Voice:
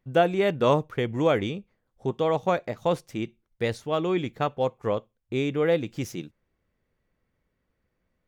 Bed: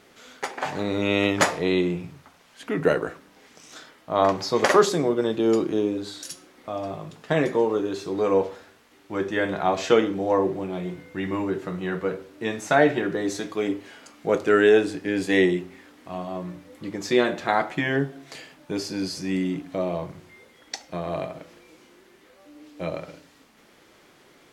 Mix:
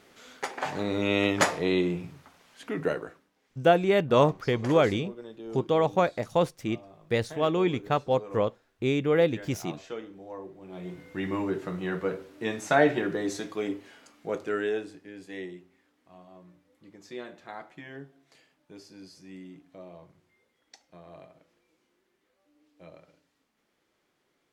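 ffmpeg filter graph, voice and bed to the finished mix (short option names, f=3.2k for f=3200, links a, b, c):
-filter_complex "[0:a]adelay=3500,volume=0.5dB[a];[1:a]volume=13.5dB,afade=t=out:st=2.48:d=0.83:silence=0.149624,afade=t=in:st=10.6:d=0.5:silence=0.149624,afade=t=out:st=13.04:d=2.07:silence=0.149624[b];[a][b]amix=inputs=2:normalize=0"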